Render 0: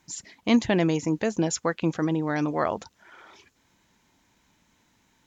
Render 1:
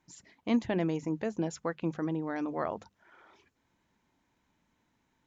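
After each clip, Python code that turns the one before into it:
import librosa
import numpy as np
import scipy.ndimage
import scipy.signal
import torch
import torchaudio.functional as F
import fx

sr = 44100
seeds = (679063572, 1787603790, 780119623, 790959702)

y = fx.high_shelf(x, sr, hz=3000.0, db=-10.5)
y = fx.hum_notches(y, sr, base_hz=50, count=4)
y = y * 10.0 ** (-7.0 / 20.0)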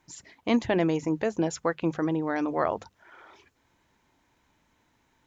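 y = fx.peak_eq(x, sr, hz=200.0, db=-6.0, octaves=0.88)
y = y * 10.0 ** (7.5 / 20.0)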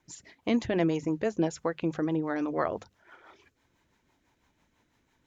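y = fx.rotary(x, sr, hz=6.0)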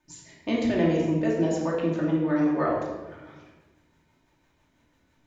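y = fx.room_shoebox(x, sr, seeds[0], volume_m3=710.0, walls='mixed', distance_m=2.6)
y = y * 10.0 ** (-3.0 / 20.0)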